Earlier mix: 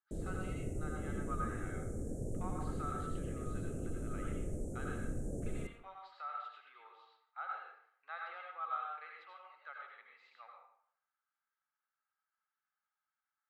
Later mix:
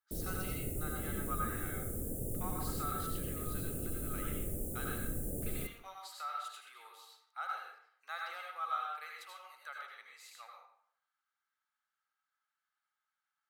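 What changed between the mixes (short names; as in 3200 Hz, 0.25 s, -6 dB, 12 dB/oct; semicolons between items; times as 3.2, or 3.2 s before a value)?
speech: remove air absorption 430 m; master: remove LPF 6900 Hz 24 dB/oct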